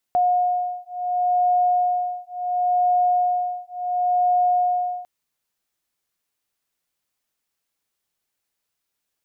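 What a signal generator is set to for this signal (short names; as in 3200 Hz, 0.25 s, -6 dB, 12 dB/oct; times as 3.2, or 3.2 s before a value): beating tones 719 Hz, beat 0.71 Hz, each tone -21 dBFS 4.90 s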